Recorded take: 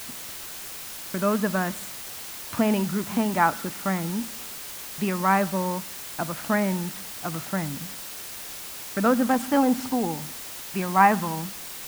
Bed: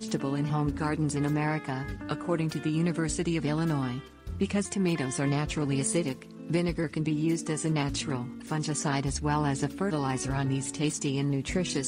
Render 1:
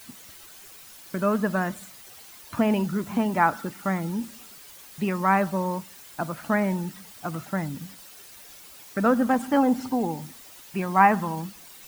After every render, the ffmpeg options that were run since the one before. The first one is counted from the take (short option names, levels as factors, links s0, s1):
-af "afftdn=nr=11:nf=-38"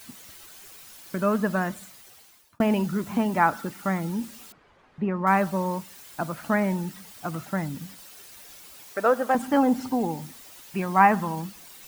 -filter_complex "[0:a]asettb=1/sr,asplit=3[s0][s1][s2];[s0]atrim=end=4.524[s3];[s1]atrim=start=4.52:end=5.27,asetpts=PTS-STARTPTS,afade=t=in:d=0.004:c=qsin,afade=t=out:st=0.746:d=0.004:c=qsin,lowpass=1400[s4];[s2]atrim=start=5.266[s5];[s3][s4]acrossfade=d=0.004:c1=hsin:c2=qsin[s6];[s6][s5]acrossfade=d=0.004:c1=qsin:c2=hsin,asettb=1/sr,asplit=3[s7][s8][s9];[s7]atrim=end=8.934[s10];[s8]atrim=start=8.93:end=9.35,asetpts=PTS-STARTPTS,afade=t=in:d=0.004:c=qsin,afade=t=out:st=0.416:d=0.004:c=qsin,lowshelf=f=310:t=q:w=1.5:g=-13[s11];[s9]atrim=start=9.346[s12];[s10][s11]acrossfade=d=0.004:c1=hsin:c2=qsin[s13];[s13][s12]acrossfade=d=0.004:c1=qsin:c2=hsin,asplit=2[s14][s15];[s14]atrim=end=2.6,asetpts=PTS-STARTPTS,afade=t=out:st=1.45:d=1.15:c=qsin[s16];[s15]atrim=start=2.6,asetpts=PTS-STARTPTS,afade=t=in:d=0.004:c=hsin[s17];[s16][s17]concat=n=2:v=0:a=1"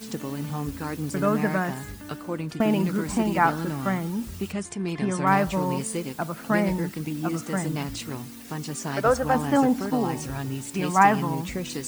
-filter_complex "[1:a]volume=0.75[s0];[0:a][s0]amix=inputs=2:normalize=0"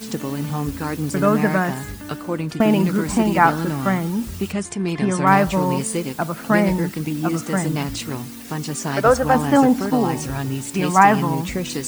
-af "volume=2,alimiter=limit=0.891:level=0:latency=1"